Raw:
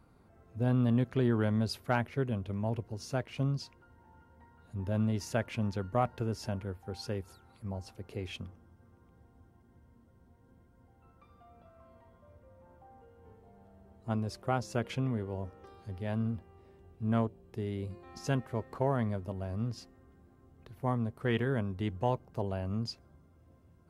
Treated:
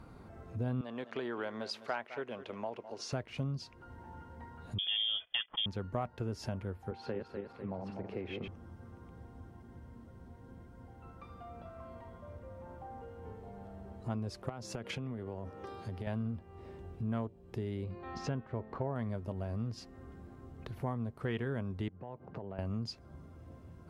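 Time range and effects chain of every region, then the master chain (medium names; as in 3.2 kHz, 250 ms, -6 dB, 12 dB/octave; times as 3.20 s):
0.81–3.13 s: band-pass 510–6400 Hz + delay 206 ms -17.5 dB
4.78–5.66 s: gate -42 dBFS, range -19 dB + waveshaping leveller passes 1 + frequency inversion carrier 3.4 kHz
6.91–8.48 s: backward echo that repeats 124 ms, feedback 54%, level -4.5 dB + three-band isolator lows -13 dB, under 160 Hz, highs -22 dB, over 2.9 kHz
14.49–16.07 s: high-pass 97 Hz + compression 12:1, threshold -37 dBFS
17.84–18.96 s: tape spacing loss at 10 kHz 27 dB + de-hum 216.6 Hz, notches 18 + tape noise reduction on one side only encoder only
21.88–22.59 s: compression 10:1, threshold -43 dBFS + band-pass 120–2100 Hz
whole clip: treble shelf 9.5 kHz -10 dB; compression 2.5:1, threshold -50 dBFS; trim +9.5 dB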